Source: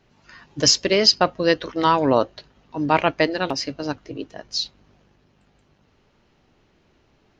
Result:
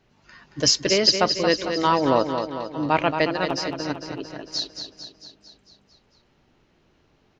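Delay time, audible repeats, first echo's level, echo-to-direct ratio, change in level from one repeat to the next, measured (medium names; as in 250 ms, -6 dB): 225 ms, 6, -7.5 dB, -5.5 dB, -4.5 dB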